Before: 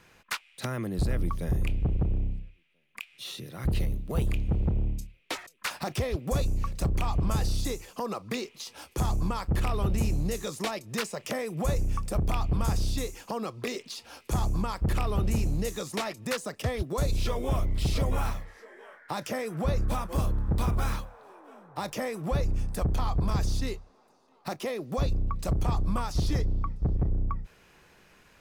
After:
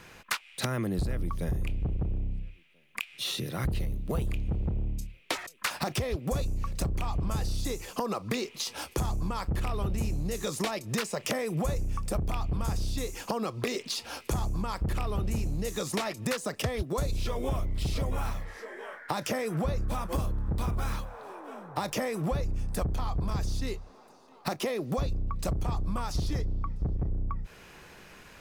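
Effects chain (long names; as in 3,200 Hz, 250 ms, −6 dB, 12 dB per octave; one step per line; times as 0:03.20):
downward compressor 6 to 1, threshold −35 dBFS, peak gain reduction 12 dB
level +7.5 dB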